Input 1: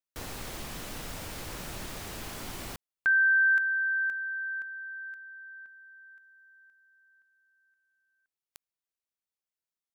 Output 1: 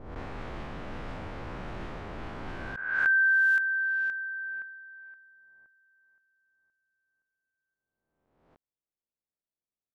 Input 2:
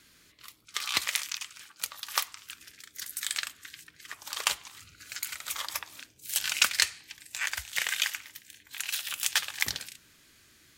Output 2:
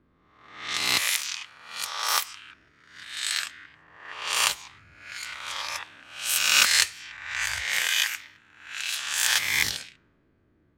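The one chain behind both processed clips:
peak hold with a rise ahead of every peak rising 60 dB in 1.26 s
low-pass that shuts in the quiet parts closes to 610 Hz, open at −23 dBFS

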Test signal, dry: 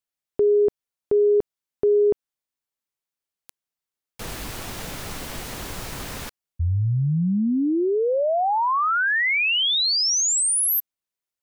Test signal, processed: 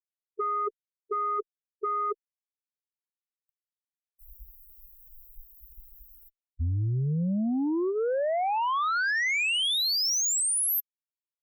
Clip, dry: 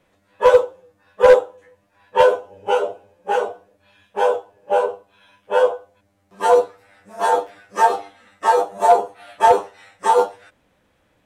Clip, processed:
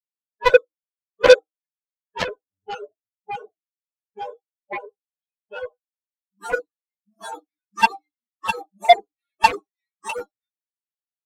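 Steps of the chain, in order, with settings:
spectral dynamics exaggerated over time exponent 3
harmonic generator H 7 −12 dB, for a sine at −3.5 dBFS
level +2 dB

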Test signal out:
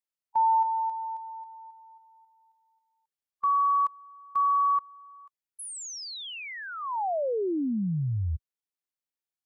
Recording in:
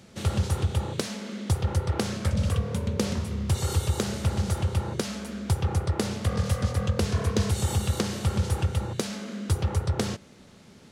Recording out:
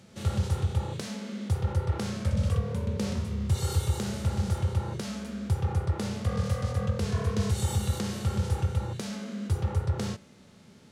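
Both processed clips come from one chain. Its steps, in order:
harmonic and percussive parts rebalanced percussive −11 dB

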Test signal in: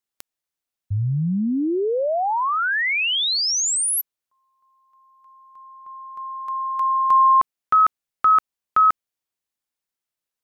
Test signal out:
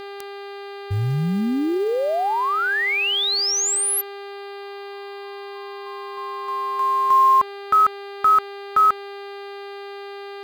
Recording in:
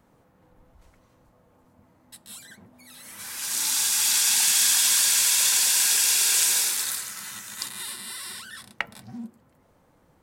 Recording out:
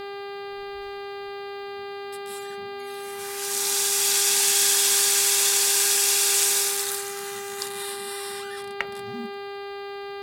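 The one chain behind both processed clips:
hum with harmonics 400 Hz, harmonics 12, −35 dBFS −6 dB per octave
floating-point word with a short mantissa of 4 bits

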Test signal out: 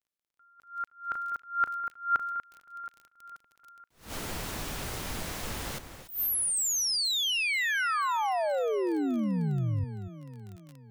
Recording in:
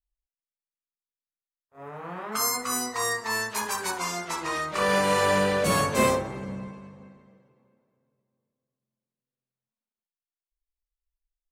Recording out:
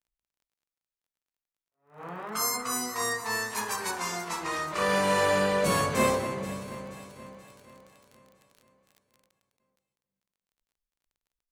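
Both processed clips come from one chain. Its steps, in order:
delay that swaps between a low-pass and a high-pass 240 ms, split 2,400 Hz, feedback 69%, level −10 dB
surface crackle 28 per second −37 dBFS
level that may rise only so fast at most 170 dB per second
level −2.5 dB

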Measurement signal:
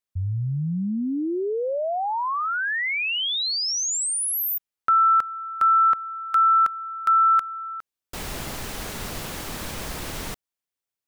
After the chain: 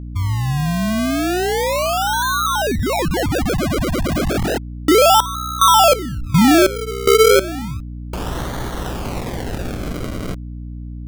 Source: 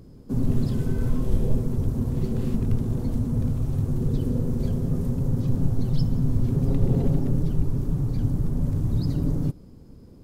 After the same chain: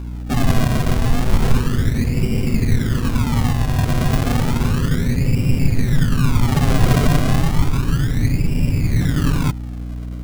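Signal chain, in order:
sample-and-hold swept by an LFO 34×, swing 100% 0.32 Hz
mains hum 60 Hz, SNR 12 dB
level +6.5 dB

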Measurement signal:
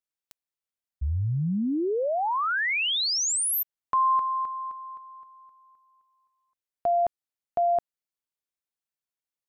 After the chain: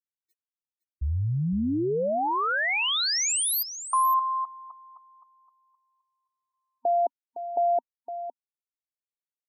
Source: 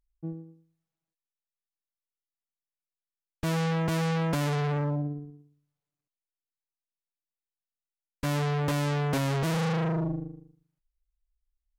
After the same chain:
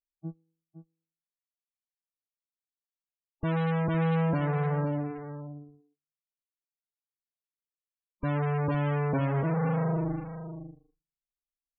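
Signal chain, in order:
noise reduction from a noise print of the clip's start 27 dB
spectral peaks only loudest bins 32
single-tap delay 511 ms −11.5 dB

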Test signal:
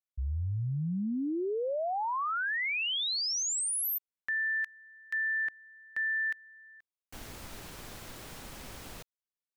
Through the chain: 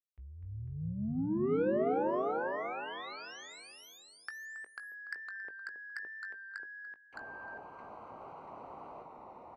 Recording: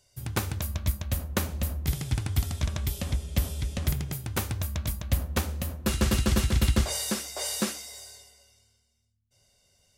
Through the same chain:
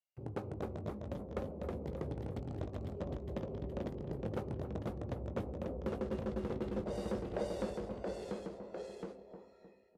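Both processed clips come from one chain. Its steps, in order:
adaptive Wiener filter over 25 samples
noise gate with hold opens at −49 dBFS, hold 331 ms, range −21 dB
dynamic equaliser 360 Hz, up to −6 dB, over −46 dBFS, Q 2.2
downward compressor, threshold −32 dBFS
envelope filter 430–2,500 Hz, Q 2.5, down, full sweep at −38.5 dBFS
soft clipping −40 dBFS
feedback echo with a low-pass in the loop 274 ms, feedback 52%, low-pass 1,100 Hz, level −8.5 dB
delay with pitch and tempo change per echo 238 ms, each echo −1 semitone, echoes 2
double-tracking delay 19 ms −12 dB
level +10.5 dB

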